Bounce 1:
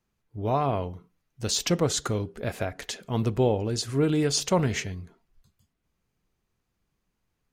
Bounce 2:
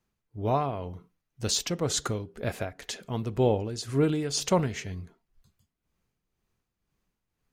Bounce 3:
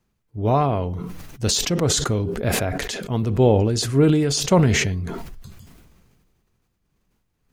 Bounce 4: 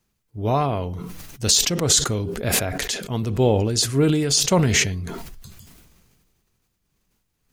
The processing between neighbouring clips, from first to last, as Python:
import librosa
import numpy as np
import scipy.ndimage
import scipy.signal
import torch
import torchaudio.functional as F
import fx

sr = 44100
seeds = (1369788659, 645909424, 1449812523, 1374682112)

y1 = x * (1.0 - 0.56 / 2.0 + 0.56 / 2.0 * np.cos(2.0 * np.pi * 2.0 * (np.arange(len(x)) / sr)))
y2 = fx.low_shelf(y1, sr, hz=420.0, db=4.5)
y2 = fx.sustainer(y2, sr, db_per_s=29.0)
y2 = F.gain(torch.from_numpy(y2), 4.5).numpy()
y3 = fx.high_shelf(y2, sr, hz=2700.0, db=9.0)
y3 = F.gain(torch.from_numpy(y3), -2.5).numpy()